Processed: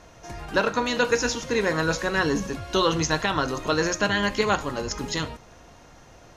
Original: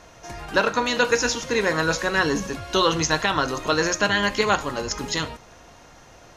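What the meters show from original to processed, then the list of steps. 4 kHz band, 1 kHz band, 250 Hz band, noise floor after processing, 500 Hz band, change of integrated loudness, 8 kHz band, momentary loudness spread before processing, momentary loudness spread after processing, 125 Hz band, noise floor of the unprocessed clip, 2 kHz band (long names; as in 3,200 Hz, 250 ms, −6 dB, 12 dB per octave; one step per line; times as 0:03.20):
−3.5 dB, −2.5 dB, 0.0 dB, −50 dBFS, −1.5 dB, −2.5 dB, −3.5 dB, 7 LU, 7 LU, +0.5 dB, −49 dBFS, −3.0 dB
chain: low-shelf EQ 460 Hz +4.5 dB
level −3.5 dB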